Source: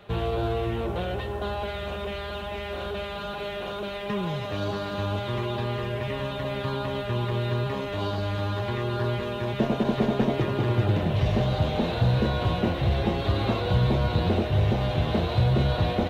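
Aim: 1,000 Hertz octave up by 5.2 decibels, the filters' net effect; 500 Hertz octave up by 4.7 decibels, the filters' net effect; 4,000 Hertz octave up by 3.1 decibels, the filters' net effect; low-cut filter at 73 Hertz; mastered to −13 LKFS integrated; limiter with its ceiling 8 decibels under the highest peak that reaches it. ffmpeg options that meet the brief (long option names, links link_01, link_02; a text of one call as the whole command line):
ffmpeg -i in.wav -af "highpass=73,equalizer=frequency=500:width_type=o:gain=4.5,equalizer=frequency=1000:width_type=o:gain=5,equalizer=frequency=4000:width_type=o:gain=3.5,volume=13dB,alimiter=limit=-2.5dB:level=0:latency=1" out.wav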